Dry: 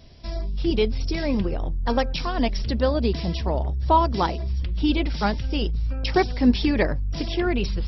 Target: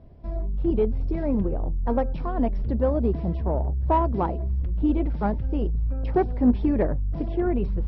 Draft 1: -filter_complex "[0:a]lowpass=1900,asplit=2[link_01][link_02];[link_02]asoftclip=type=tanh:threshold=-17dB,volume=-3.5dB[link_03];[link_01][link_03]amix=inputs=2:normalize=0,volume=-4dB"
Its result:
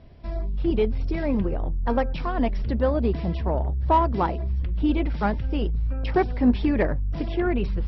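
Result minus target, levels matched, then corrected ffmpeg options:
2,000 Hz band +8.5 dB
-filter_complex "[0:a]lowpass=890,asplit=2[link_01][link_02];[link_02]asoftclip=type=tanh:threshold=-17dB,volume=-3.5dB[link_03];[link_01][link_03]amix=inputs=2:normalize=0,volume=-4dB"

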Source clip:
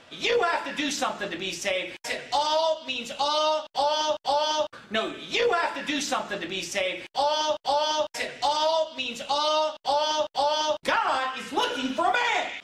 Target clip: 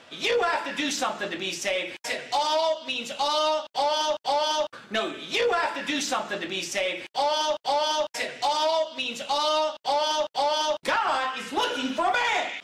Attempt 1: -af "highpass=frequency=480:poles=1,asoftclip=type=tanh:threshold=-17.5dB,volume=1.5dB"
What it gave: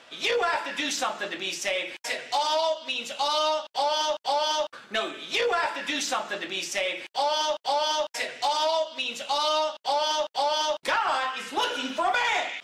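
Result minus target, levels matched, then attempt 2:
125 Hz band −6.0 dB
-af "highpass=frequency=140:poles=1,asoftclip=type=tanh:threshold=-17.5dB,volume=1.5dB"

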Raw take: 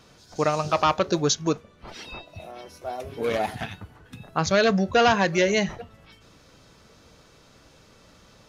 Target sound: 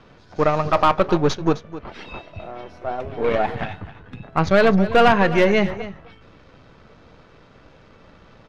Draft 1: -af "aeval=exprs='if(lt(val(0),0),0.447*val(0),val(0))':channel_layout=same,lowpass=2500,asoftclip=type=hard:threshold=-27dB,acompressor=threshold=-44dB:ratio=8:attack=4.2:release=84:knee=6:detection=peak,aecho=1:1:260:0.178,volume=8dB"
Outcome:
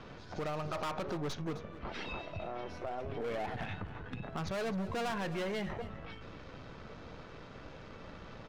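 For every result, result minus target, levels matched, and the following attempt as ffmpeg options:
downward compressor: peak gain reduction +15 dB; hard clipping: distortion +20 dB
-af "aeval=exprs='if(lt(val(0),0),0.447*val(0),val(0))':channel_layout=same,lowpass=2500,asoftclip=type=hard:threshold=-27dB,aecho=1:1:260:0.178,volume=8dB"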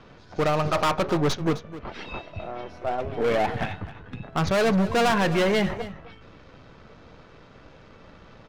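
hard clipping: distortion +20 dB
-af "aeval=exprs='if(lt(val(0),0),0.447*val(0),val(0))':channel_layout=same,lowpass=2500,asoftclip=type=hard:threshold=-15dB,aecho=1:1:260:0.178,volume=8dB"

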